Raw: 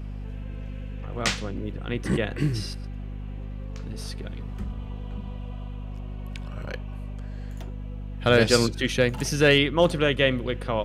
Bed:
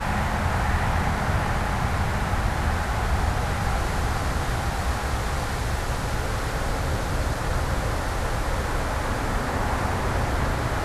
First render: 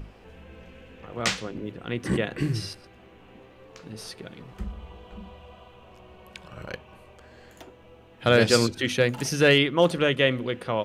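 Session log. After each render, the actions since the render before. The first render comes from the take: notches 50/100/150/200/250 Hz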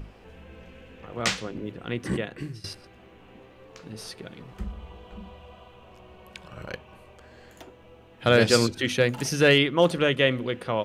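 1.91–2.64 fade out, to -18 dB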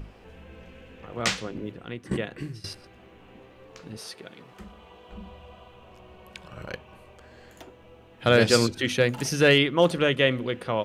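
1.64–2.11 fade out, to -13.5 dB; 3.97–5.09 HPF 350 Hz 6 dB/oct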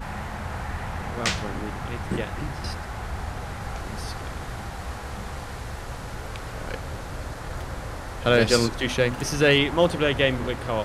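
add bed -8.5 dB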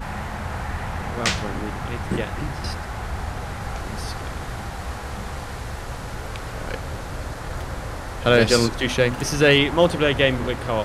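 gain +3 dB; limiter -3 dBFS, peak gain reduction 1.5 dB

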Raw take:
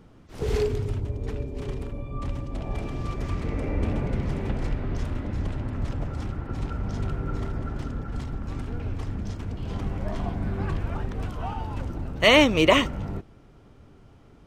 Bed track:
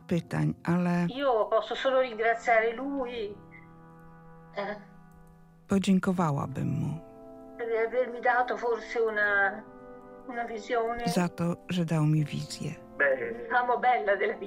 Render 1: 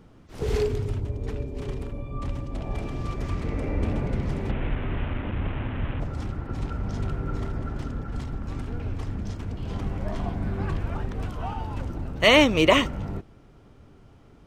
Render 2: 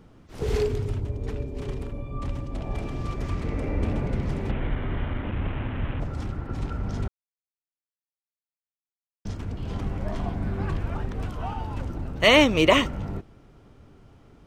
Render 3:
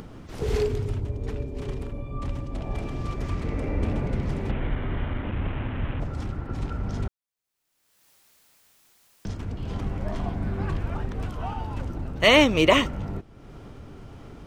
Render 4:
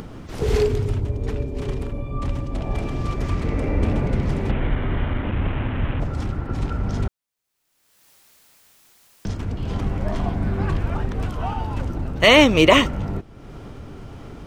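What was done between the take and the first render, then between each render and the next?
4.51–6 delta modulation 16 kbps, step -30.5 dBFS
4.59–5.24 notch 2600 Hz, Q 9.4; 7.08–9.25 mute
upward compressor, threshold -32 dBFS
gain +5.5 dB; limiter -1 dBFS, peak gain reduction 2.5 dB

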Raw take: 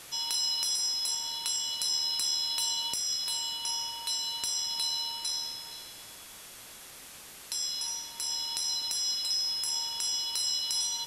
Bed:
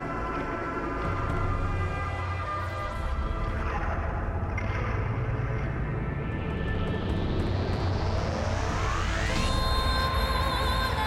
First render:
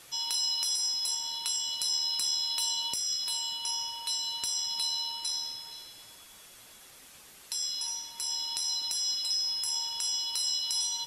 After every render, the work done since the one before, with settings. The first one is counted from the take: denoiser 6 dB, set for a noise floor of -48 dBFS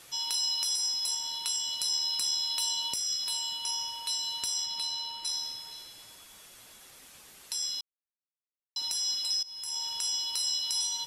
4.64–5.24 high shelf 8400 Hz -> 4600 Hz -8 dB; 7.81–8.76 mute; 9.43–9.89 fade in, from -20 dB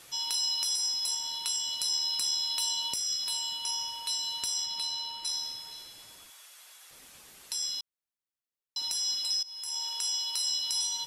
6.3–6.91 HPF 820 Hz; 9.41–10.49 HPF 350 Hz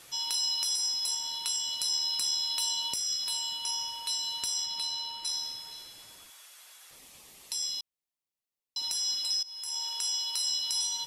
6.96–8.83 bell 1500 Hz -10.5 dB 0.3 oct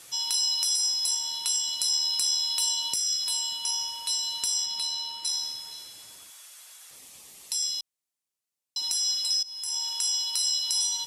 HPF 57 Hz; bell 8300 Hz +6.5 dB 1.5 oct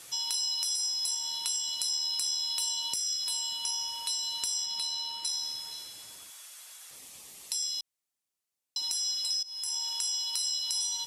compressor 2:1, threshold -32 dBFS, peak gain reduction 5.5 dB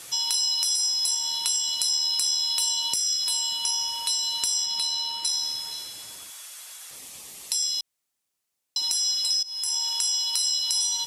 gain +6.5 dB

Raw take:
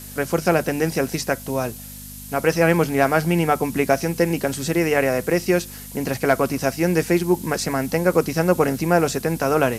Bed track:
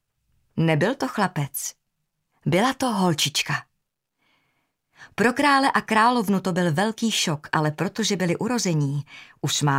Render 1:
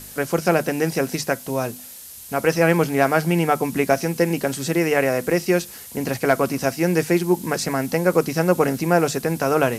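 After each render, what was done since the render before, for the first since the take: de-hum 50 Hz, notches 5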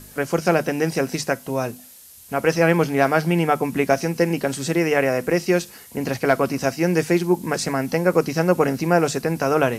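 noise print and reduce 6 dB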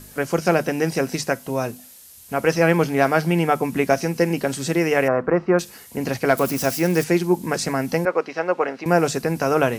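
5.08–5.59 synth low-pass 1200 Hz, resonance Q 2.8; 6.37–7.04 switching spikes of -22.5 dBFS; 8.05–8.86 BPF 490–2900 Hz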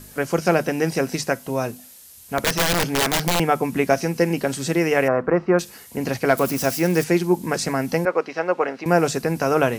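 2.38–3.4 wrapped overs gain 13.5 dB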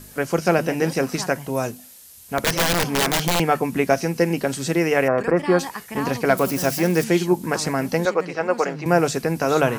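add bed track -12.5 dB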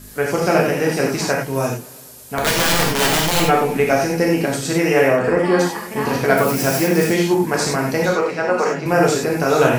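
non-linear reverb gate 0.12 s flat, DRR -2 dB; warbling echo 0.113 s, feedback 74%, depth 70 cents, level -22.5 dB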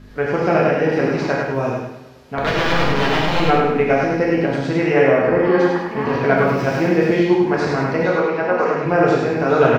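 air absorption 260 m; feedback echo 0.103 s, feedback 38%, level -4 dB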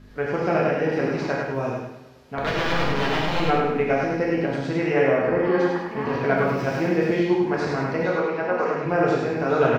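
gain -5.5 dB

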